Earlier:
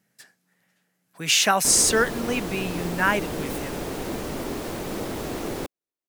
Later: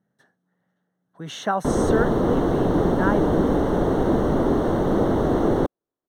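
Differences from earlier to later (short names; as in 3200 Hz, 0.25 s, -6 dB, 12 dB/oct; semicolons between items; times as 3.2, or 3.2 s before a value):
background +11.5 dB; master: add running mean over 18 samples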